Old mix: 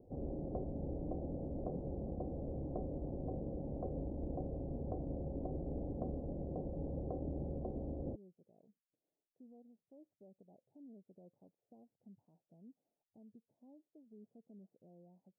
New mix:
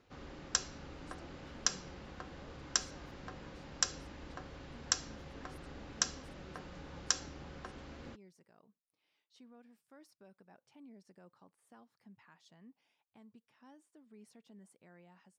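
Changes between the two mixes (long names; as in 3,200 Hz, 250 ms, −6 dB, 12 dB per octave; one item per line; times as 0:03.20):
background −9.0 dB
master: remove Butterworth low-pass 700 Hz 48 dB per octave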